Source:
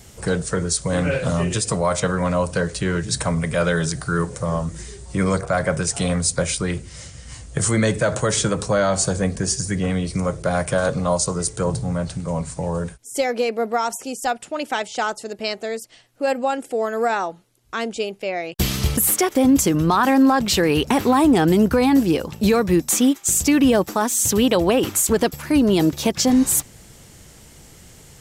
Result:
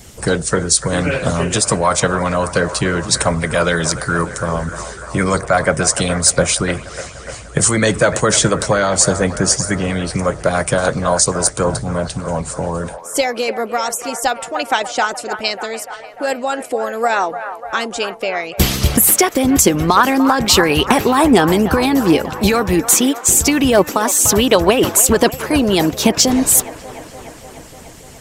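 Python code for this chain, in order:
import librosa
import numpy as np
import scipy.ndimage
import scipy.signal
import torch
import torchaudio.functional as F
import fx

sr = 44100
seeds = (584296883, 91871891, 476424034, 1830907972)

y = fx.echo_wet_bandpass(x, sr, ms=296, feedback_pct=72, hz=1100.0, wet_db=-10.0)
y = fx.hpss(y, sr, part='percussive', gain_db=9)
y = np.clip(y, -10.0 ** (-1.5 / 20.0), 10.0 ** (-1.5 / 20.0))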